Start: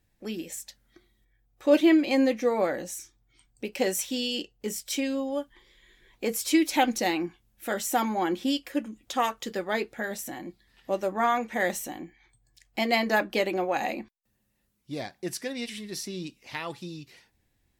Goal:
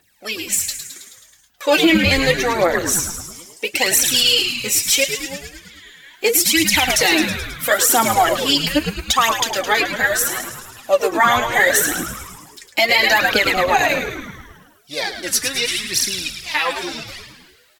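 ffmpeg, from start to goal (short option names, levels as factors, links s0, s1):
-filter_complex "[0:a]highpass=f=1500:p=1,asettb=1/sr,asplit=3[s0][s1][s2];[s0]atrim=end=5.044[s3];[s1]atrim=start=5.04:end=6.24,asetpts=PTS-STARTPTS,afade=t=in:d=0.004:c=qsin,afade=t=out:st=1.196:d=0.004:c=qsin,acompressor=threshold=0.00178:ratio=6[s4];[s2]atrim=start=6.236[s5];[s3][s4]acrossfade=d=0.004:c1=hsin:c2=qsin[s6];[s6][s5]acrossfade=d=0.004:c1=qsin:c2=hsin,aphaser=in_gain=1:out_gain=1:delay=4:decay=0.73:speed=0.75:type=triangular,asplit=2[s7][s8];[s8]asplit=8[s9][s10][s11][s12][s13][s14][s15][s16];[s9]adelay=107,afreqshift=-120,volume=0.355[s17];[s10]adelay=214,afreqshift=-240,volume=0.219[s18];[s11]adelay=321,afreqshift=-360,volume=0.136[s19];[s12]adelay=428,afreqshift=-480,volume=0.0841[s20];[s13]adelay=535,afreqshift=-600,volume=0.0525[s21];[s14]adelay=642,afreqshift=-720,volume=0.0324[s22];[s15]adelay=749,afreqshift=-840,volume=0.0202[s23];[s16]adelay=856,afreqshift=-960,volume=0.0124[s24];[s17][s18][s19][s20][s21][s22][s23][s24]amix=inputs=8:normalize=0[s25];[s7][s25]amix=inputs=2:normalize=0,alimiter=level_in=9.44:limit=0.891:release=50:level=0:latency=1,volume=0.668"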